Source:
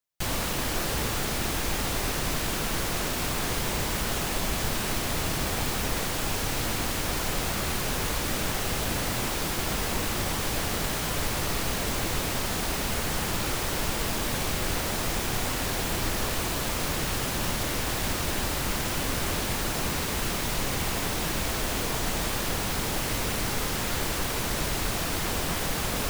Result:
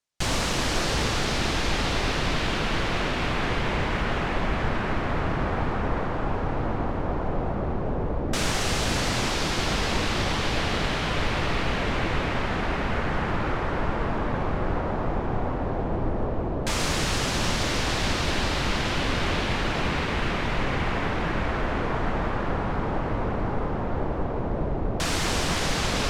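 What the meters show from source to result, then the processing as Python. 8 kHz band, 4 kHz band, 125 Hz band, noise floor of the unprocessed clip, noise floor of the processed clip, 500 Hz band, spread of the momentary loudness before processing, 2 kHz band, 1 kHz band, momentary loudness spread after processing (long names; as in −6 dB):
−5.5 dB, +0.5 dB, +4.0 dB, −30 dBFS, −28 dBFS, +4.5 dB, 0 LU, +2.5 dB, +4.0 dB, 4 LU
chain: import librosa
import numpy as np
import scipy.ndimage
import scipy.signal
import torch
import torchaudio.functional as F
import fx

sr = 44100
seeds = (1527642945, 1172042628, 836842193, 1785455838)

y = fx.filter_lfo_lowpass(x, sr, shape='saw_down', hz=0.12, low_hz=620.0, high_hz=7400.0, q=0.96)
y = y * librosa.db_to_amplitude(4.0)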